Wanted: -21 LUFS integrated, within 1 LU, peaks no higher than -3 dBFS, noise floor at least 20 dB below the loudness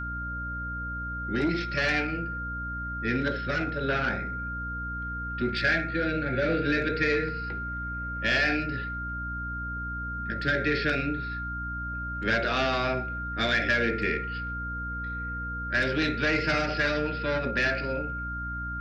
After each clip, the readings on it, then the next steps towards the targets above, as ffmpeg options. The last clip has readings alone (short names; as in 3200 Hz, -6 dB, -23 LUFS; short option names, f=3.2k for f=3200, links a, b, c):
hum 60 Hz; harmonics up to 300 Hz; hum level -34 dBFS; steady tone 1400 Hz; tone level -33 dBFS; loudness -28.5 LUFS; peak -13.5 dBFS; loudness target -21.0 LUFS
-> -af "bandreject=f=60:t=h:w=6,bandreject=f=120:t=h:w=6,bandreject=f=180:t=h:w=6,bandreject=f=240:t=h:w=6,bandreject=f=300:t=h:w=6"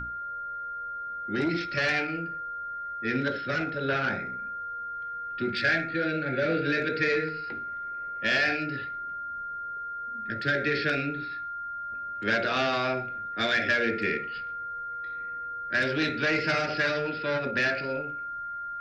hum none; steady tone 1400 Hz; tone level -33 dBFS
-> -af "bandreject=f=1.4k:w=30"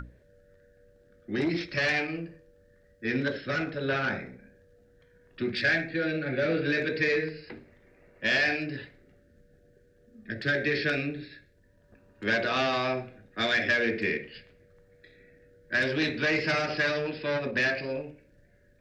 steady tone none; loudness -28.0 LUFS; peak -13.5 dBFS; loudness target -21.0 LUFS
-> -af "volume=7dB"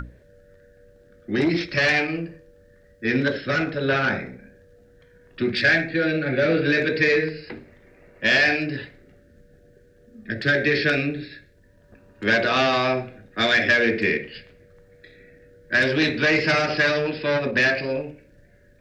loudness -21.0 LUFS; peak -6.5 dBFS; noise floor -55 dBFS